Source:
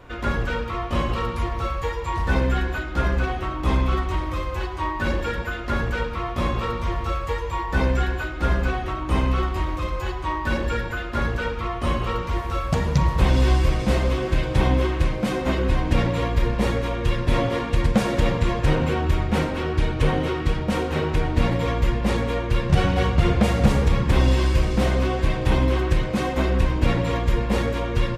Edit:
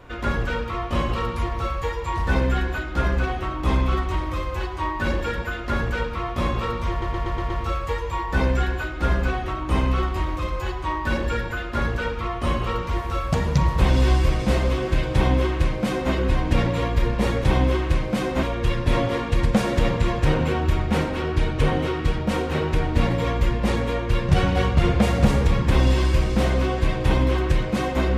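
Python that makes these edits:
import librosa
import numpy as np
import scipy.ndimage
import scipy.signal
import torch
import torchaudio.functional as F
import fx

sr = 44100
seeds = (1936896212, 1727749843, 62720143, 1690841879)

y = fx.edit(x, sr, fx.stutter(start_s=6.9, slice_s=0.12, count=6),
    fx.duplicate(start_s=14.54, length_s=0.99, to_s=16.84), tone=tone)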